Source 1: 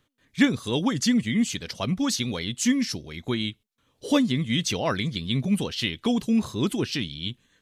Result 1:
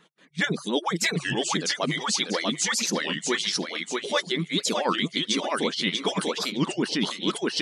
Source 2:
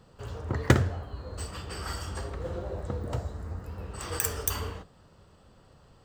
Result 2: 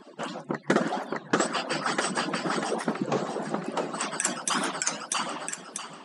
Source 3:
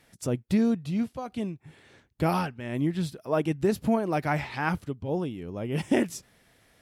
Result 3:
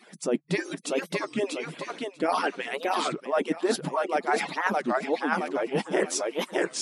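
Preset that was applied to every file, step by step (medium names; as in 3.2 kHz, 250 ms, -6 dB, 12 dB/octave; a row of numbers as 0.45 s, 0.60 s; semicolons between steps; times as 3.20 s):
harmonic-percussive separation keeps percussive; treble shelf 4.8 kHz -5 dB; on a send: thinning echo 642 ms, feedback 28%, high-pass 400 Hz, level -3.5 dB; on the sum: dynamic bell 2.6 kHz, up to -6 dB, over -47 dBFS, Q 3.6; reverse; compression 4:1, threshold -39 dBFS; reverse; FFT band-pass 140–11000 Hz; warped record 33 1/3 rpm, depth 250 cents; peak normalisation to -9 dBFS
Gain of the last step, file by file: +15.0 dB, +16.0 dB, +15.0 dB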